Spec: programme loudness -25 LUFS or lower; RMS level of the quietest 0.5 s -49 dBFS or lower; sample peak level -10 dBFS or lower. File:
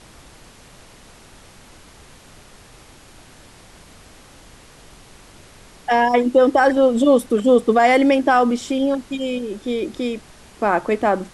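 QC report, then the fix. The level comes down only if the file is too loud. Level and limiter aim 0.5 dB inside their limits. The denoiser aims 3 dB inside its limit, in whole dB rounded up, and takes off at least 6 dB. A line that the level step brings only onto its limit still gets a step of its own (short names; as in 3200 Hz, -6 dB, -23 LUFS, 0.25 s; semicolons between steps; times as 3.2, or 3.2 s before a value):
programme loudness -17.5 LUFS: fail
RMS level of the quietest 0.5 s -46 dBFS: fail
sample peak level -4.5 dBFS: fail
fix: gain -8 dB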